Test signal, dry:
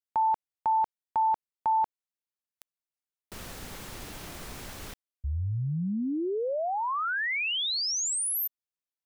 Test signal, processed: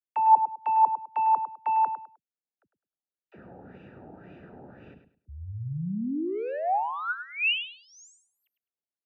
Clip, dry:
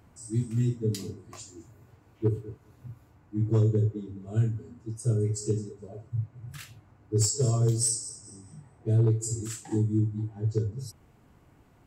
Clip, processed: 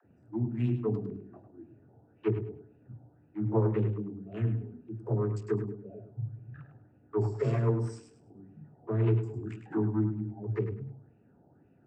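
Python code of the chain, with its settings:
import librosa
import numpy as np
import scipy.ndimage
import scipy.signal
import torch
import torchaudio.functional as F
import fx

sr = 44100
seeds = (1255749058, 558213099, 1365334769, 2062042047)

y = fx.wiener(x, sr, points=41)
y = scipy.signal.sosfilt(scipy.signal.butter(2, 140.0, 'highpass', fs=sr, output='sos'), y)
y = fx.dispersion(y, sr, late='lows', ms=50.0, hz=330.0)
y = fx.filter_lfo_lowpass(y, sr, shape='sine', hz=1.9, low_hz=810.0, high_hz=2700.0, q=4.2)
y = fx.echo_feedback(y, sr, ms=103, feedback_pct=24, wet_db=-9.5)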